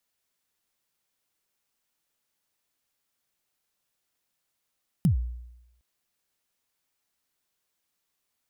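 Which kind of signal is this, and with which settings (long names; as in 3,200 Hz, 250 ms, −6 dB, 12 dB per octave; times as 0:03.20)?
synth kick length 0.76 s, from 200 Hz, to 60 Hz, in 111 ms, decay 0.90 s, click on, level −15.5 dB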